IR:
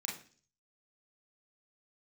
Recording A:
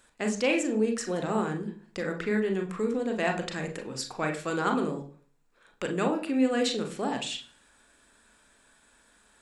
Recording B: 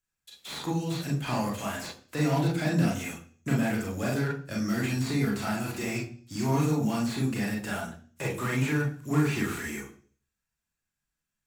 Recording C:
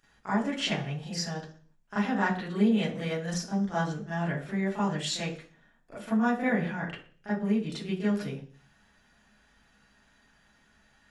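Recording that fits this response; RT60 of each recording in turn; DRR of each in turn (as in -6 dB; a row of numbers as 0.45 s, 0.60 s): B; 0.45 s, 0.45 s, 0.45 s; 3.5 dB, -3.0 dB, -12.5 dB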